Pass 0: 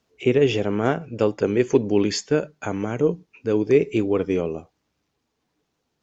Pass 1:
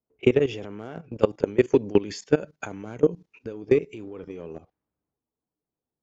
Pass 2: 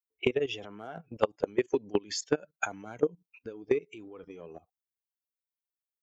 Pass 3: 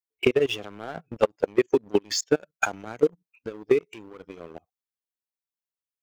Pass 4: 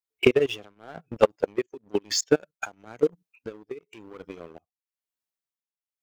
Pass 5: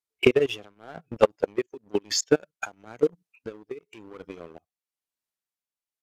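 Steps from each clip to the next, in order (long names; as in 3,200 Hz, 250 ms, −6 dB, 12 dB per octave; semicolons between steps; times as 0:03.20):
output level in coarse steps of 17 dB; transient designer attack +9 dB, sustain +5 dB; low-pass that shuts in the quiet parts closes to 920 Hz, open at −25.5 dBFS; level −5 dB
spectral dynamics exaggerated over time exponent 1.5; downward compressor 16 to 1, threshold −27 dBFS, peak gain reduction 14 dB; low-shelf EQ 230 Hz −11.5 dB; level +7.5 dB
leveller curve on the samples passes 2
shaped tremolo triangle 1 Hz, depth 95%; level +3 dB
downsampling to 32,000 Hz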